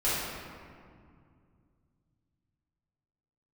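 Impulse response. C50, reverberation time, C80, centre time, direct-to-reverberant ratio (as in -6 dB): -3.0 dB, 2.2 s, 0.0 dB, 129 ms, -11.5 dB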